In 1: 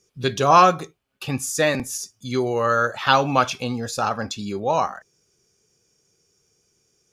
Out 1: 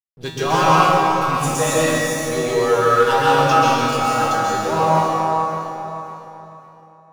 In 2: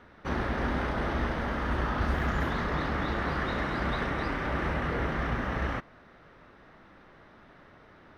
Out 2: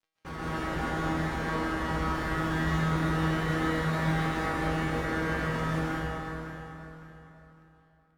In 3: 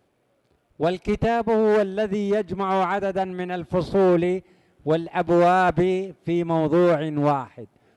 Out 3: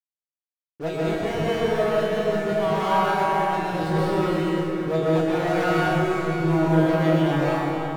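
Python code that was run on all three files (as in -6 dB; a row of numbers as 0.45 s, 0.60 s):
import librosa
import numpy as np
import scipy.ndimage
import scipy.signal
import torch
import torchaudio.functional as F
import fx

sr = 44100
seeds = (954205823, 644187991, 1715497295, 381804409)

p1 = fx.dereverb_blind(x, sr, rt60_s=0.74)
p2 = fx.level_steps(p1, sr, step_db=14)
p3 = p1 + (p2 * librosa.db_to_amplitude(-1.0))
p4 = fx.leveller(p3, sr, passes=3)
p5 = np.sign(p4) * np.maximum(np.abs(p4) - 10.0 ** (-30.0 / 20.0), 0.0)
p6 = fx.comb_fb(p5, sr, f0_hz=160.0, decay_s=0.68, harmonics='all', damping=0.0, mix_pct=90)
p7 = p6 + fx.echo_feedback(p6, sr, ms=557, feedback_pct=31, wet_db=-12.0, dry=0)
p8 = fx.rev_plate(p7, sr, seeds[0], rt60_s=3.1, hf_ratio=0.6, predelay_ms=115, drr_db=-7.0)
y = p8 * librosa.db_to_amplitude(-1.0)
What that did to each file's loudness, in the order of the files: +4.0 LU, +1.0 LU, -0.5 LU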